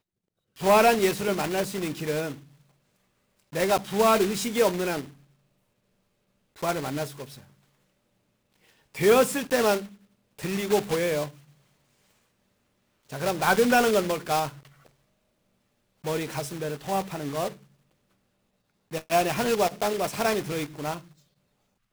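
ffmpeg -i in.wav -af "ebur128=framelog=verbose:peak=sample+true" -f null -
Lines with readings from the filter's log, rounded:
Integrated loudness:
  I:         -25.5 LUFS
  Threshold: -37.2 LUFS
Loudness range:
  LRA:         7.6 LU
  Threshold: -48.2 LUFS
  LRA low:   -33.6 LUFS
  LRA high:  -26.0 LUFS
Sample peak:
  Peak:      -13.0 dBFS
True peak:
  Peak:      -12.0 dBFS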